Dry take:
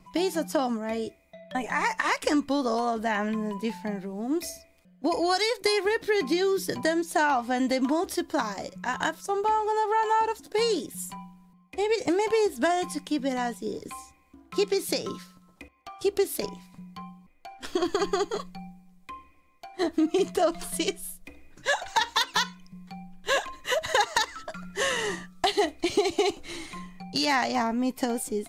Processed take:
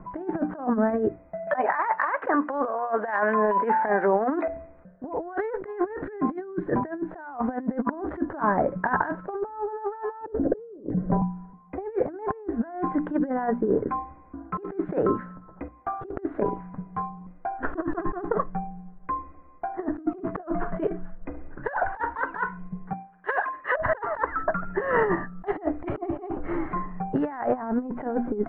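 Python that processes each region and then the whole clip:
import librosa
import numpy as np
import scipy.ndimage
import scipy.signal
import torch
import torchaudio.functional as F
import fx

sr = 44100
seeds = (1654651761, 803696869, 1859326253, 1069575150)

y = fx.chain(x, sr, fx.highpass(hz=600.0, slope=12),
    fx.high_shelf(hz=3000.0, db=4.0),
    fx.band_squash(depth_pct=100), at=(1.47, 4.48))
y = fx.chain(y, sr, fx.over_compress(threshold_db=-31.0, ratio=-1.0),
    fx.moving_average(points=14),
    fx.low_shelf_res(hz=720.0, db=8.5, q=3.0), at=(10.26, 11.22))
y = fx.chain(y, sr, fx.highpass(hz=1400.0, slope=6),
    fx.high_shelf(hz=3100.0, db=7.5), at=(22.93, 23.77))
y = scipy.signal.sosfilt(scipy.signal.ellip(4, 1.0, 70, 1600.0, 'lowpass', fs=sr, output='sos'), y)
y = fx.hum_notches(y, sr, base_hz=60, count=5)
y = fx.over_compress(y, sr, threshold_db=-33.0, ratio=-0.5)
y = F.gain(torch.from_numpy(y), 7.5).numpy()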